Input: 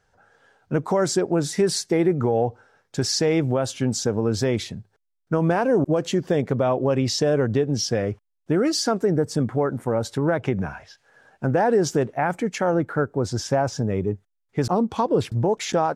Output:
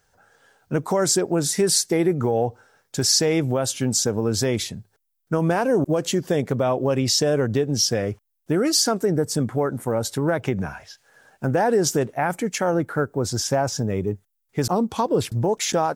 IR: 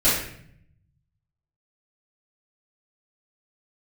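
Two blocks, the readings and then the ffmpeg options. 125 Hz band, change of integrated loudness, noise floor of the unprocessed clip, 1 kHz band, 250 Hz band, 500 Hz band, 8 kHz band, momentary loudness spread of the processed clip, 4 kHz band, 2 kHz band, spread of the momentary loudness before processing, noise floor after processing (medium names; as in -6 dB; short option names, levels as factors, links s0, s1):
-0.5 dB, +1.0 dB, -74 dBFS, 0.0 dB, -0.5 dB, -0.5 dB, +7.5 dB, 9 LU, +5.0 dB, +1.0 dB, 7 LU, -72 dBFS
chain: -af "aemphasis=mode=production:type=50fm"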